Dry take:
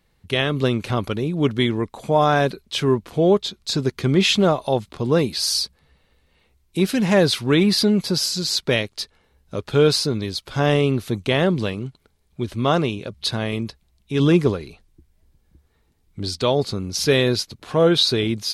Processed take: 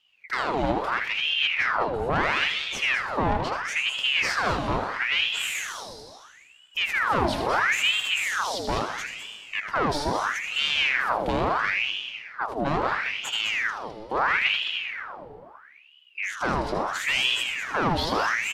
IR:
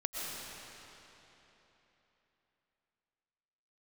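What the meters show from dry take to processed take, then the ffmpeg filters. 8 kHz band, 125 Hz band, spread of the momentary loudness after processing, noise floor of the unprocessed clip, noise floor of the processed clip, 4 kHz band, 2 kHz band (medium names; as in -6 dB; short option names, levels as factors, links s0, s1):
-7.0 dB, -14.0 dB, 10 LU, -64 dBFS, -53 dBFS, -3.0 dB, +5.5 dB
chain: -filter_complex "[0:a]tiltshelf=f=1400:g=6.5,asoftclip=type=tanh:threshold=0.178,aecho=1:1:78.72|207:0.398|0.355,asplit=2[s0][s1];[1:a]atrim=start_sample=2205,asetrate=79380,aresample=44100,adelay=124[s2];[s1][s2]afir=irnorm=-1:irlink=0,volume=0.473[s3];[s0][s3]amix=inputs=2:normalize=0,aeval=exprs='val(0)*sin(2*PI*1700*n/s+1700*0.75/0.75*sin(2*PI*0.75*n/s))':c=same,volume=0.631"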